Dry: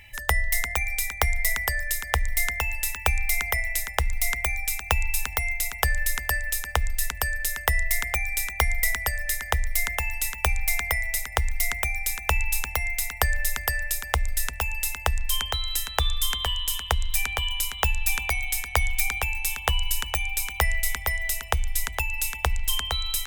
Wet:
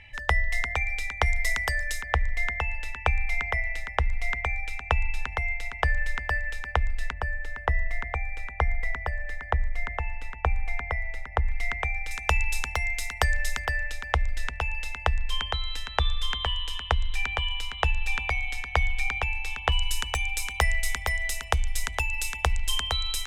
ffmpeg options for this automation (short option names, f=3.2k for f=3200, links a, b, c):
-af "asetnsamples=n=441:p=0,asendcmd='1.26 lowpass f 6300;2.02 lowpass f 2500;7.13 lowpass f 1500;11.49 lowpass f 2500;12.11 lowpass f 6300;13.65 lowpass f 3300;19.72 lowpass f 8200',lowpass=3.7k"